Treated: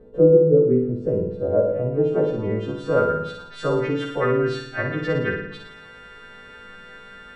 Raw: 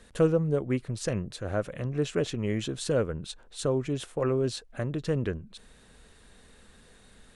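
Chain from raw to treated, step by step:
every partial snapped to a pitch grid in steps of 2 semitones
low-shelf EQ 150 Hz −6 dB
in parallel at +2 dB: downward compressor, threshold −40 dBFS, peak gain reduction 19.5 dB
on the sum: low-pass filter sweep 410 Hz → 1,800 Hz, 0:01.06–0:03.70
on a send: flutter between parallel walls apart 9.7 metres, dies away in 0.79 s
on the sum: rectangular room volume 2,400 cubic metres, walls furnished, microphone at 0.46 metres
level +3 dB

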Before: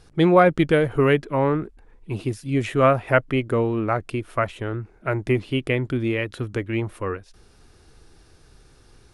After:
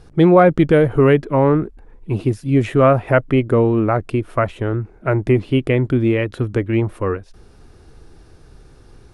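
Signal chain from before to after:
tilt shelving filter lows +4.5 dB, about 1,400 Hz
in parallel at −1 dB: brickwall limiter −11 dBFS, peak gain reduction 9.5 dB
on the sum: level −2 dB

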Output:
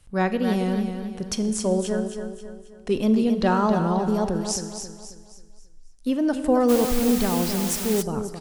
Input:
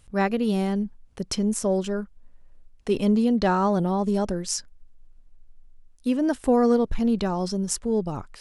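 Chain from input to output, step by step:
tape wow and flutter 84 cents
repeating echo 269 ms, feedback 41%, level −8 dB
four-comb reverb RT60 1.3 s, combs from 29 ms, DRR 12 dB
0:06.68–0:08.01: background noise white −32 dBFS

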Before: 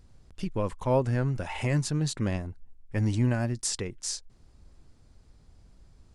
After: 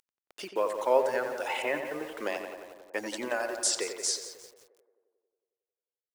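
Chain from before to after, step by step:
0:01.62–0:02.15: Butterworth low-pass 3,100 Hz 96 dB per octave
reverb reduction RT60 1.4 s
high-pass filter 400 Hz 24 dB per octave
in parallel at −2.5 dB: brickwall limiter −24.5 dBFS, peak gain reduction 8.5 dB
on the sum: bit reduction 9 bits
on a send: tape delay 89 ms, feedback 77%, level −6.5 dB, low-pass 2,400 Hz
on the sum: feedback echo at a low word length 175 ms, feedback 55%, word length 7 bits, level −13.5 dB

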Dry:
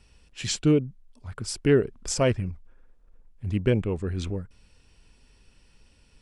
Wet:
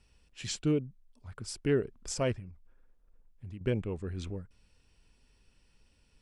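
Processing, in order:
0:02.37–0:03.61: downward compressor 5 to 1, threshold −34 dBFS, peak gain reduction 12 dB
level −8 dB

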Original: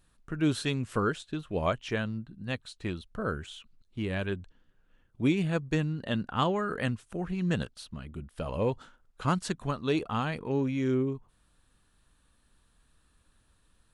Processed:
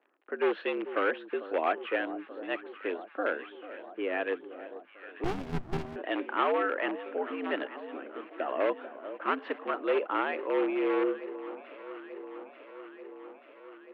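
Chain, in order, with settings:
low-pass that shuts in the quiet parts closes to 1,100 Hz, open at −23.5 dBFS
in parallel at −6 dB: wrap-around overflow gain 23 dB
on the sum: surface crackle 77 per second −45 dBFS
on a send: delay that swaps between a low-pass and a high-pass 443 ms, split 1,000 Hz, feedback 82%, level −13 dB
on the sum: single-sideband voice off tune +83 Hz 250–2,700 Hz
0:05.24–0:05.96: windowed peak hold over 65 samples

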